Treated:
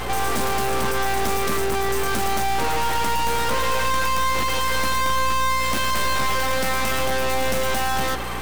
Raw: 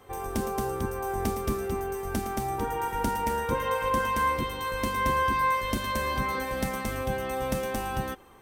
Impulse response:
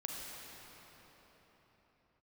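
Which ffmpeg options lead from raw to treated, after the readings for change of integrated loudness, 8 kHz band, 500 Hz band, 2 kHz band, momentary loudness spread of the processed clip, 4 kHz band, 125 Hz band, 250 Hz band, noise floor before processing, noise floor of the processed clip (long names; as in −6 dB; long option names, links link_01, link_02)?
+7.0 dB, +12.0 dB, +5.0 dB, +8.5 dB, 2 LU, +13.5 dB, +3.0 dB, +2.0 dB, −35 dBFS, −22 dBFS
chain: -filter_complex "[0:a]asplit=2[link_01][link_02];[link_02]highpass=frequency=720:poles=1,volume=38dB,asoftclip=type=tanh:threshold=-13.5dB[link_03];[link_01][link_03]amix=inputs=2:normalize=0,lowpass=frequency=6800:poles=1,volume=-6dB,aeval=exprs='max(val(0),0)':channel_layout=same,aeval=exprs='val(0)+0.0178*(sin(2*PI*60*n/s)+sin(2*PI*2*60*n/s)/2+sin(2*PI*3*60*n/s)/3+sin(2*PI*4*60*n/s)/4+sin(2*PI*5*60*n/s)/5)':channel_layout=same,volume=2dB"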